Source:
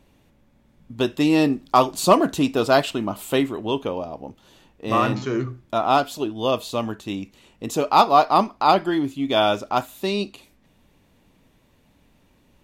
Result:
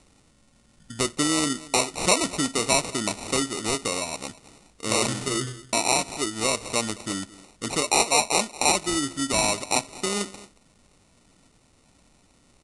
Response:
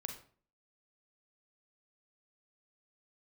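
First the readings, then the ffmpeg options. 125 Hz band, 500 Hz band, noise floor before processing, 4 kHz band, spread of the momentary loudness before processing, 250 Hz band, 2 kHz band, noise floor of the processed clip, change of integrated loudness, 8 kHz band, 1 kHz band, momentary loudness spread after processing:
-5.0 dB, -7.0 dB, -60 dBFS, +3.0 dB, 13 LU, -6.5 dB, +1.5 dB, -61 dBFS, -3.0 dB, +14.0 dB, -8.0 dB, 10 LU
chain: -filter_complex "[0:a]acompressor=threshold=0.0562:ratio=2,asplit=2[s0][s1];[s1]aecho=0:1:219:0.106[s2];[s0][s2]amix=inputs=2:normalize=0,acrusher=samples=27:mix=1:aa=0.000001,aresample=22050,aresample=44100,crystalizer=i=4.5:c=0,volume=0.794"

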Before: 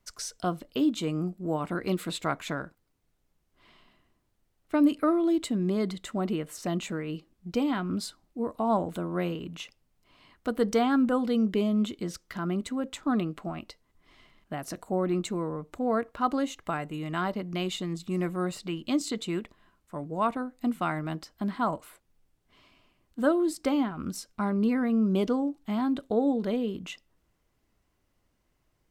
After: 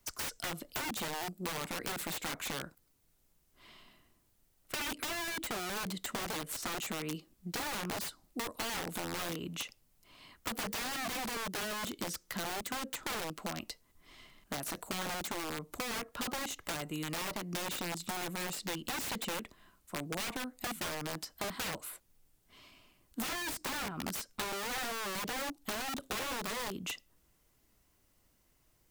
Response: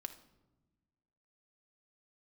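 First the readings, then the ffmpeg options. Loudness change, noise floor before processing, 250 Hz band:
-8.0 dB, -74 dBFS, -16.0 dB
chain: -filter_complex "[0:a]crystalizer=i=2:c=0,aeval=exprs='(mod(21.1*val(0)+1,2)-1)/21.1':c=same,acrossover=split=170|3100[s0][s1][s2];[s0]acompressor=threshold=0.00316:ratio=4[s3];[s1]acompressor=threshold=0.0141:ratio=4[s4];[s2]acompressor=threshold=0.0112:ratio=4[s5];[s3][s4][s5]amix=inputs=3:normalize=0"

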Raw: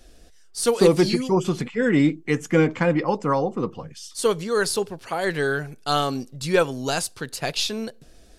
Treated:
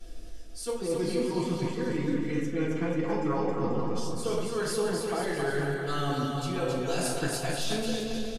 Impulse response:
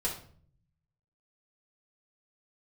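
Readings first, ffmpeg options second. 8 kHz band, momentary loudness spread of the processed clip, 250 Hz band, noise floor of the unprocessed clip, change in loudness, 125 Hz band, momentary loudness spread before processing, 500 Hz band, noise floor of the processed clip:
-6.5 dB, 3 LU, -6.5 dB, -49 dBFS, -7.5 dB, -5.5 dB, 11 LU, -7.5 dB, -38 dBFS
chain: -filter_complex "[1:a]atrim=start_sample=2205,asetrate=30429,aresample=44100[s0];[0:a][s0]afir=irnorm=-1:irlink=0,areverse,acompressor=threshold=0.0891:ratio=10,areverse,aecho=1:1:270|486|658.8|797|907.6:0.631|0.398|0.251|0.158|0.1,volume=0.473"

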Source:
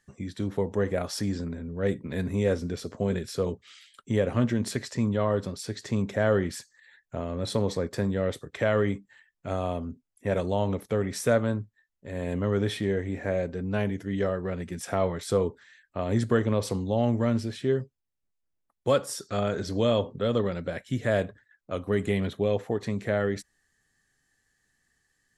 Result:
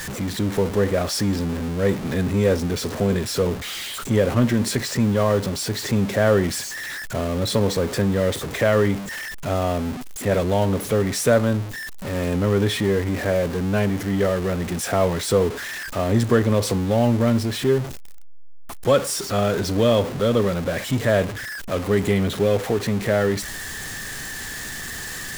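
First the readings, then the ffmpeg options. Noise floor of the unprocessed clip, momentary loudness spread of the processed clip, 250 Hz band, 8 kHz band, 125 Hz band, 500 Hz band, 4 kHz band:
-78 dBFS, 11 LU, +7.0 dB, +12.0 dB, +7.0 dB, +6.5 dB, +10.5 dB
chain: -af "aeval=exprs='val(0)+0.5*0.0282*sgn(val(0))':c=same,volume=1.78"

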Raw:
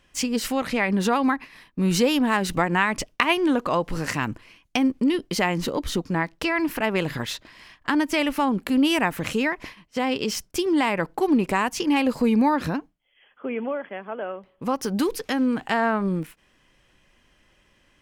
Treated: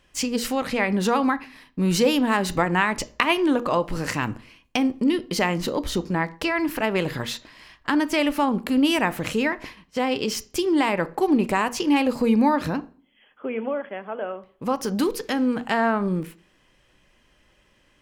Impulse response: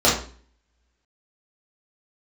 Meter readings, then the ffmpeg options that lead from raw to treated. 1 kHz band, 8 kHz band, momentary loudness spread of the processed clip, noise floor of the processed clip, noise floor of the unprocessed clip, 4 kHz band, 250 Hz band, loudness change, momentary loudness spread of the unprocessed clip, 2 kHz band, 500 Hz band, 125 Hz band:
+0.5 dB, 0.0 dB, 11 LU, -62 dBFS, -63 dBFS, +0.5 dB, +0.5 dB, +0.5 dB, 11 LU, 0.0 dB, +1.5 dB, 0.0 dB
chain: -filter_complex "[0:a]asplit=2[s0][s1];[1:a]atrim=start_sample=2205[s2];[s1][s2]afir=irnorm=-1:irlink=0,volume=0.02[s3];[s0][s3]amix=inputs=2:normalize=0"

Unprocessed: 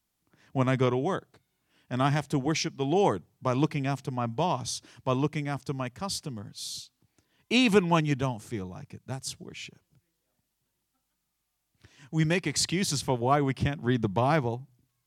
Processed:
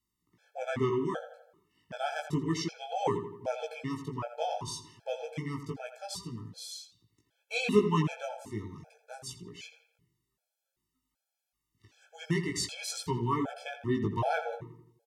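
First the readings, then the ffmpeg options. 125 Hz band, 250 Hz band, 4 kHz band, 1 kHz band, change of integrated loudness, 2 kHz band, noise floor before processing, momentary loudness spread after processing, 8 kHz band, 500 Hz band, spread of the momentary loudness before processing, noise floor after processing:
-7.0 dB, -6.0 dB, -6.5 dB, -5.0 dB, -5.5 dB, -5.5 dB, -80 dBFS, 16 LU, -6.5 dB, -4.0 dB, 12 LU, under -85 dBFS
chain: -filter_complex "[0:a]flanger=delay=17:depth=2.4:speed=0.31,asplit=2[s0][s1];[s1]adelay=84,lowpass=f=2900:p=1,volume=0.335,asplit=2[s2][s3];[s3]adelay=84,lowpass=f=2900:p=1,volume=0.51,asplit=2[s4][s5];[s5]adelay=84,lowpass=f=2900:p=1,volume=0.51,asplit=2[s6][s7];[s7]adelay=84,lowpass=f=2900:p=1,volume=0.51,asplit=2[s8][s9];[s9]adelay=84,lowpass=f=2900:p=1,volume=0.51,asplit=2[s10][s11];[s11]adelay=84,lowpass=f=2900:p=1,volume=0.51[s12];[s2][s4][s6][s8][s10][s12]amix=inputs=6:normalize=0[s13];[s0][s13]amix=inputs=2:normalize=0,afftfilt=real='re*gt(sin(2*PI*1.3*pts/sr)*(1-2*mod(floor(b*sr/1024/440),2)),0)':imag='im*gt(sin(2*PI*1.3*pts/sr)*(1-2*mod(floor(b*sr/1024/440),2)),0)':win_size=1024:overlap=0.75"

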